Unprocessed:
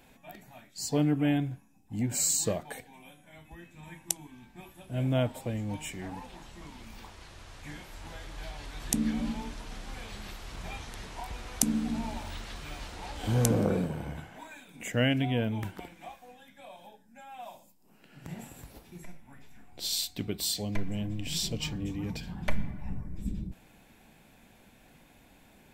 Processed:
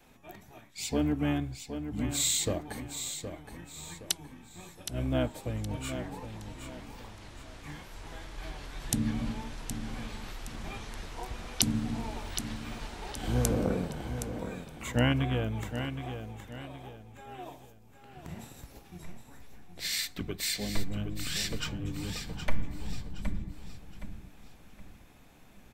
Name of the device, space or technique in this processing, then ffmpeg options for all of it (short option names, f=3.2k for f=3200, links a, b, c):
octave pedal: -filter_complex "[0:a]adynamicequalizer=threshold=0.00631:dfrequency=170:dqfactor=1.6:tfrequency=170:tqfactor=1.6:attack=5:release=100:ratio=0.375:range=2.5:mode=cutabove:tftype=bell,asplit=2[a][b];[b]asetrate=22050,aresample=44100,atempo=2,volume=-4dB[c];[a][c]amix=inputs=2:normalize=0,aecho=1:1:768|1536|2304|3072:0.355|0.128|0.046|0.0166,volume=-2dB"